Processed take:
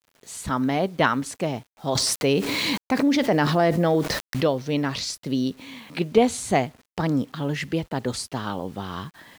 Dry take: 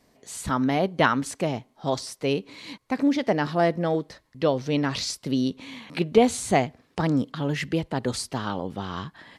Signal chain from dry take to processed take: bit crusher 9-bit; 1.95–4.47 s: level flattener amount 70%

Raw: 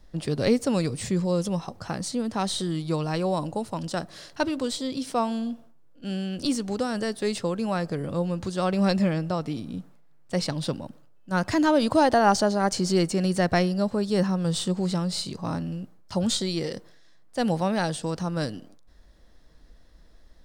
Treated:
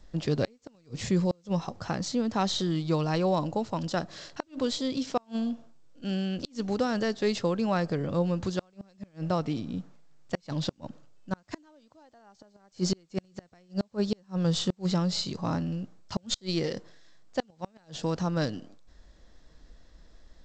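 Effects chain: inverted gate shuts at -15 dBFS, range -37 dB; G.722 64 kbps 16 kHz

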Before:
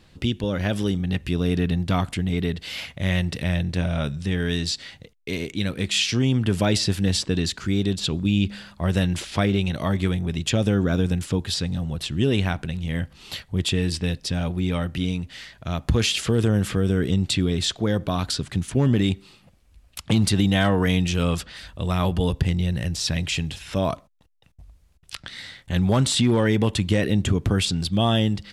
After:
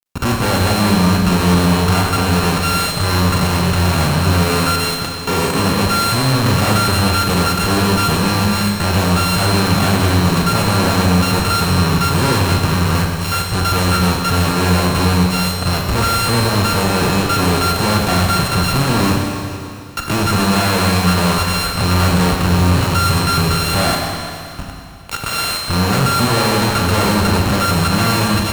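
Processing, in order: sorted samples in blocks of 32 samples; fuzz box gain 47 dB, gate -42 dBFS; Schroeder reverb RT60 2.6 s, combs from 30 ms, DRR 0.5 dB; trim -2.5 dB

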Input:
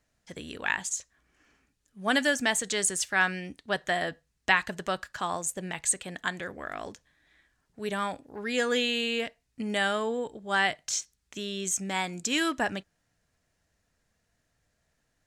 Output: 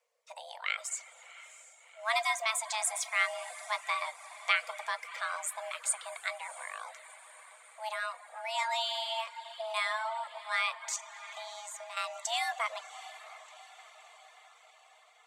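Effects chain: frequency shift +440 Hz; 10.96–11.97 s: level held to a coarse grid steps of 13 dB; echo that smears into a reverb 708 ms, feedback 58%, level -15 dB; plate-style reverb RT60 2.1 s, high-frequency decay 0.7×, DRR 8 dB; reverb removal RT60 0.54 s; trim -5 dB

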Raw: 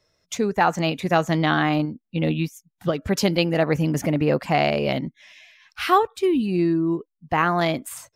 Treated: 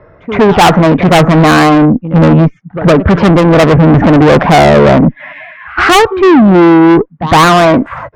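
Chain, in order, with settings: low-pass 1.6 kHz 24 dB/octave; sine folder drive 8 dB, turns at -6.5 dBFS; pre-echo 111 ms -24 dB; valve stage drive 18 dB, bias 0.2; loudness maximiser +20 dB; trim -1 dB

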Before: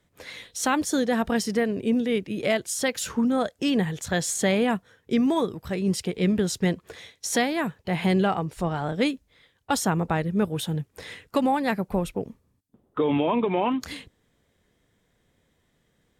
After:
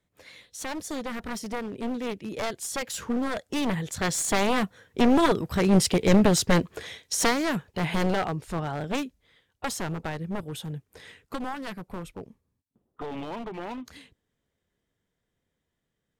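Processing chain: one-sided wavefolder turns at -23 dBFS; Doppler pass-by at 5.93 s, 9 m/s, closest 8.8 m; trim +7 dB

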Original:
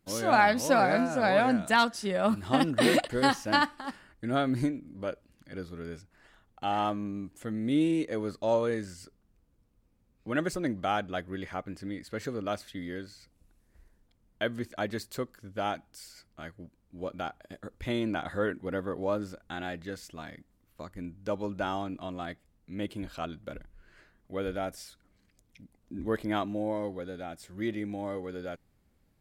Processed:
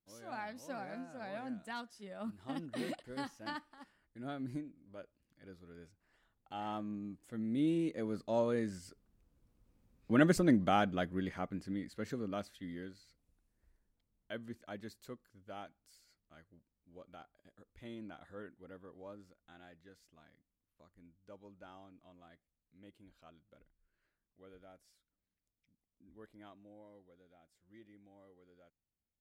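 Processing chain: Doppler pass-by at 10.15 s, 6 m/s, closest 5 m; dynamic bell 200 Hz, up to +7 dB, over -53 dBFS, Q 1.1

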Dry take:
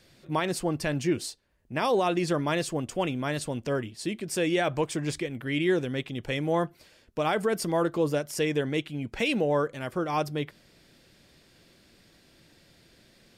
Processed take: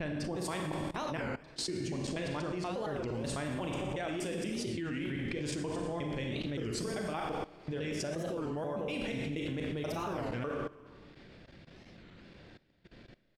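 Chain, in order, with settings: slices played last to first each 120 ms, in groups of 8; random-step tremolo, depth 75%; in parallel at +1 dB: compression 6:1, threshold -37 dBFS, peak gain reduction 14.5 dB; on the sum: level-controlled noise filter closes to 2.8 kHz, open at -23 dBFS; gate with hold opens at -53 dBFS; bass shelf 370 Hz +3.5 dB; on a send: frequency-shifting echo 115 ms, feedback 57%, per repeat -60 Hz, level -17 dB; on the sum: Schroeder reverb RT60 1 s, combs from 30 ms, DRR 2.5 dB; level held to a coarse grid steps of 18 dB; warped record 33 1/3 rpm, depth 250 cents

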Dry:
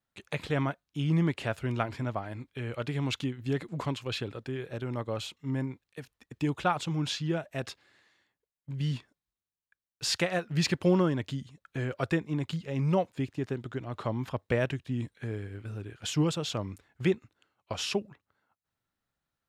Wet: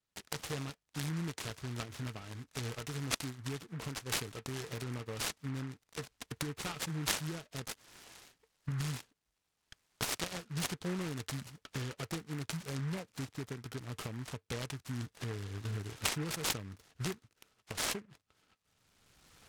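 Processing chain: recorder AGC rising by 21 dB/s; four-pole ladder low-pass 3.8 kHz, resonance 70%; peaking EQ 670 Hz -10 dB 1.9 oct; small resonant body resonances 450/1300 Hz, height 10 dB, ringing for 80 ms; in parallel at +1 dB: compression, threshold -53 dBFS, peak gain reduction 22 dB; on the sum: delay time shaken by noise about 1.4 kHz, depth 0.13 ms

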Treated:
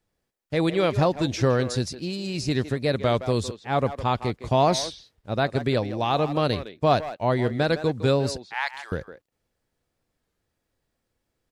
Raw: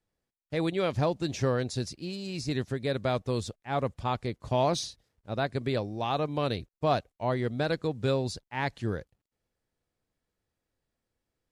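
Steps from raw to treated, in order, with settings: 8.40–8.92 s: high-pass 900 Hz 24 dB/octave; speakerphone echo 160 ms, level -11 dB; warped record 33 1/3 rpm, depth 100 cents; trim +6 dB

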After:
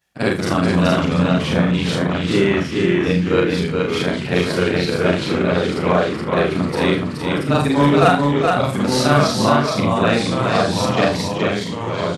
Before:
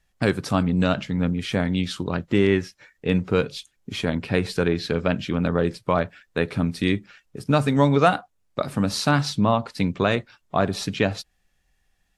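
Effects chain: short-time spectra conjugated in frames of 112 ms; high-pass 95 Hz 12 dB/octave; bass shelf 160 Hz -4.5 dB; hard clipper -13.5 dBFS, distortion -26 dB; delay 423 ms -3.5 dB; ever faster or slower copies 160 ms, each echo -2 st, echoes 3, each echo -6 dB; early reflections 34 ms -8 dB, 73 ms -14.5 dB; trim +7 dB

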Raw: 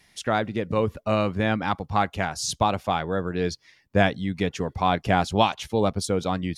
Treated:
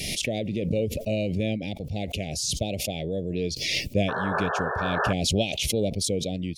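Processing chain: elliptic band-stop 610–2400 Hz, stop band 60 dB; painted sound noise, 4.08–5.13 s, 380–1800 Hz -28 dBFS; swell ahead of each attack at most 25 dB/s; trim -2.5 dB

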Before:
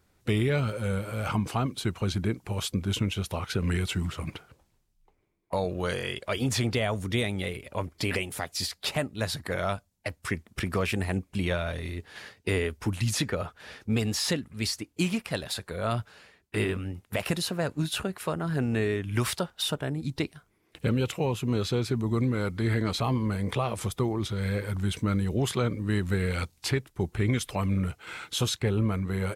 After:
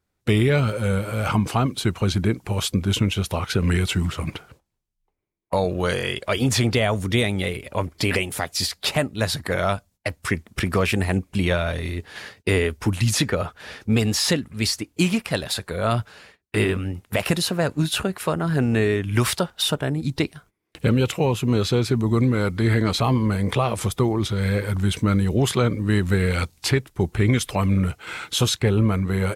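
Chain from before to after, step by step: gate -56 dBFS, range -17 dB; trim +7 dB

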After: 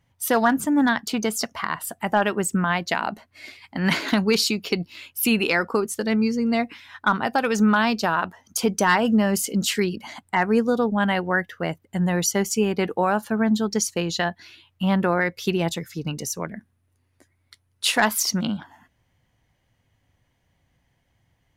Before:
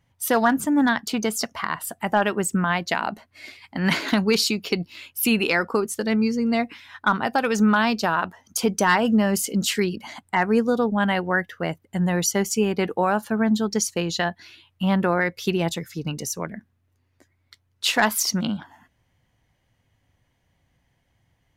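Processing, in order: 16.56–17.98 s: peaking EQ 9.8 kHz +12 dB 0.23 oct

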